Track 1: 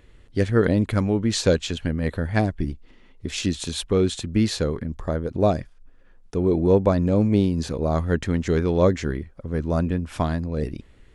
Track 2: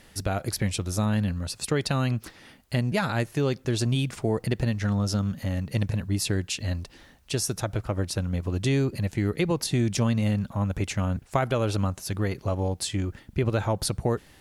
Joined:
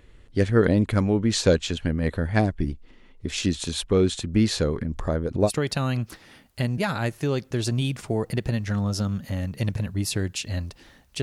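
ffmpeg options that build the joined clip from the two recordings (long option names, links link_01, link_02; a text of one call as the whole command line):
ffmpeg -i cue0.wav -i cue1.wav -filter_complex "[0:a]asplit=3[link_01][link_02][link_03];[link_01]afade=type=out:start_time=4.33:duration=0.02[link_04];[link_02]acompressor=mode=upward:threshold=-22dB:ratio=2.5:attack=3.2:release=140:knee=2.83:detection=peak,afade=type=in:start_time=4.33:duration=0.02,afade=type=out:start_time=5.5:duration=0.02[link_05];[link_03]afade=type=in:start_time=5.5:duration=0.02[link_06];[link_04][link_05][link_06]amix=inputs=3:normalize=0,apad=whole_dur=11.22,atrim=end=11.22,atrim=end=5.5,asetpts=PTS-STARTPTS[link_07];[1:a]atrim=start=1.58:end=7.36,asetpts=PTS-STARTPTS[link_08];[link_07][link_08]acrossfade=duration=0.06:curve1=tri:curve2=tri" out.wav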